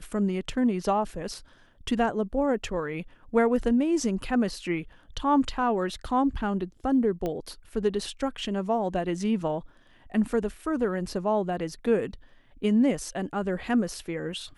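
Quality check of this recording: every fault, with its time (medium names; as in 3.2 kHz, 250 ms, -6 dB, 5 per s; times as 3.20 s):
7.26 s: pop -18 dBFS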